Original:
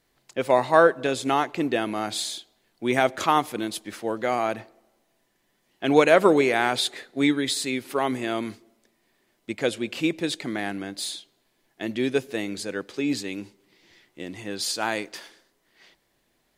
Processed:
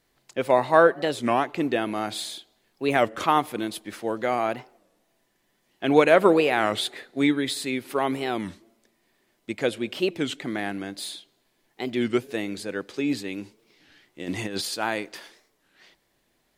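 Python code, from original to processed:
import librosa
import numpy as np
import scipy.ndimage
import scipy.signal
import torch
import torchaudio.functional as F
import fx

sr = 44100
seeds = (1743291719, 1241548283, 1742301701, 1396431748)

y = fx.dynamic_eq(x, sr, hz=6400.0, q=1.1, threshold_db=-45.0, ratio=4.0, max_db=-7)
y = fx.over_compress(y, sr, threshold_db=-35.0, ratio=-0.5, at=(14.27, 14.73), fade=0.02)
y = fx.record_warp(y, sr, rpm=33.33, depth_cents=250.0)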